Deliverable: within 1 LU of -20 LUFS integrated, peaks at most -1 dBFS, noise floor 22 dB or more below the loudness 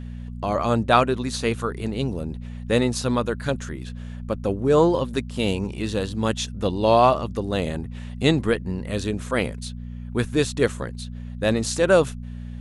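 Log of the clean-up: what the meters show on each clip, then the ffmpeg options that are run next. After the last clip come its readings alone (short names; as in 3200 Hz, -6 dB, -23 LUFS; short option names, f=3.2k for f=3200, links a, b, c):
hum 60 Hz; harmonics up to 240 Hz; hum level -31 dBFS; loudness -23.0 LUFS; peak -3.0 dBFS; loudness target -20.0 LUFS
-> -af "bandreject=f=60:t=h:w=4,bandreject=f=120:t=h:w=4,bandreject=f=180:t=h:w=4,bandreject=f=240:t=h:w=4"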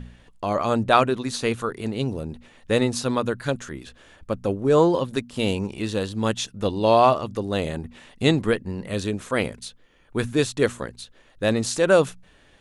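hum none; loudness -23.5 LUFS; peak -2.5 dBFS; loudness target -20.0 LUFS
-> -af "volume=3.5dB,alimiter=limit=-1dB:level=0:latency=1"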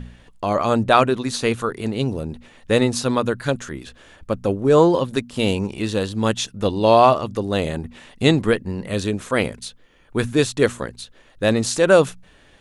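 loudness -20.0 LUFS; peak -1.0 dBFS; noise floor -52 dBFS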